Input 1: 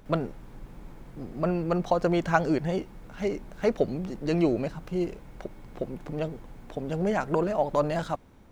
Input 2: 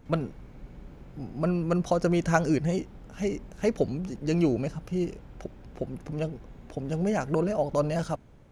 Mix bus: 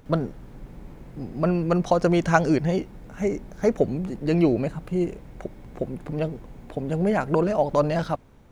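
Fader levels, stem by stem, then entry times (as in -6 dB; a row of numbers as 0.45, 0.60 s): -0.5, -2.5 dB; 0.00, 0.00 s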